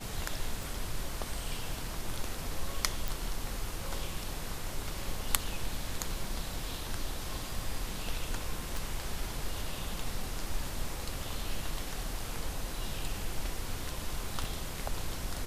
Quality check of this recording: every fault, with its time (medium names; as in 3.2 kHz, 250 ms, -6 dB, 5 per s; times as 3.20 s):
0.63 s: pop
3.08 s: pop
8.77 s: pop
14.44 s: dropout 2.2 ms